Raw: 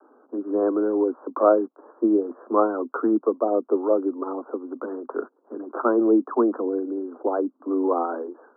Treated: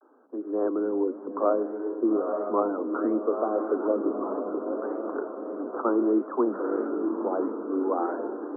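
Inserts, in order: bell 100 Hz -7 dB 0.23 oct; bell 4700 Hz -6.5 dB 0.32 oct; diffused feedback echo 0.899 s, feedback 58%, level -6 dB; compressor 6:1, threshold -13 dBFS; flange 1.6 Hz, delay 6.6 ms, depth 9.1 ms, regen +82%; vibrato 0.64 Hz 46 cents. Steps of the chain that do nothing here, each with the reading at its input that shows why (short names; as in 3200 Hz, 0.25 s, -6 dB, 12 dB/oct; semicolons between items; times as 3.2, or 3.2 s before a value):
bell 100 Hz: input band starts at 200 Hz; bell 4700 Hz: input band ends at 1500 Hz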